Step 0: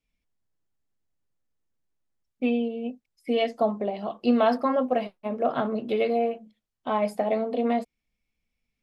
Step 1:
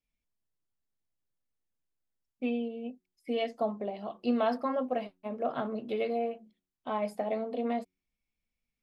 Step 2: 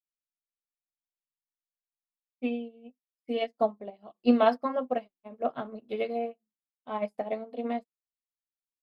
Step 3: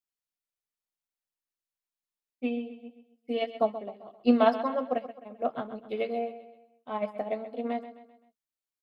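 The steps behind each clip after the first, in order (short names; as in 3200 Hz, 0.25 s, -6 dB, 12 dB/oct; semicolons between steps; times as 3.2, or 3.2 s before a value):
de-hum 92.03 Hz, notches 4; gain -7 dB
upward expander 2.5:1, over -50 dBFS; gain +8.5 dB
feedback echo 0.13 s, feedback 44%, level -13 dB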